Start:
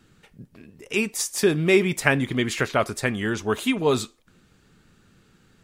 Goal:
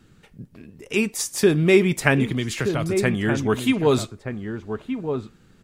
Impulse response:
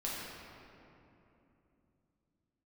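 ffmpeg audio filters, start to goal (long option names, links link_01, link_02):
-filter_complex "[0:a]lowshelf=frequency=390:gain=5,asettb=1/sr,asplit=3[link_01][link_02][link_03];[link_01]atrim=end=2.274[link_04];[link_02]atrim=start=2.27:end=2.95,asetpts=PTS-STARTPTS,afade=type=in:duration=0.004:curve=qsin,afade=type=out:start_time=0.676:duration=0.004:curve=qsin,acrossover=split=140|3000[link_05][link_06][link_07];[link_06]acompressor=threshold=-25dB:ratio=6[link_08];[link_05][link_08][link_07]amix=inputs=3:normalize=0[link_09];[link_03]atrim=start=2.946[link_10];[link_04][link_09]acrossfade=duration=0.004:curve1=hsin:curve2=qsin[link_11];[link_11][link_10]acrossfade=duration=0.004:curve1=qsin:curve2=hsin,asplit=2[link_12][link_13];[link_13]adelay=1224,volume=-7dB,highshelf=frequency=4000:gain=-27.6[link_14];[link_12][link_14]amix=inputs=2:normalize=0"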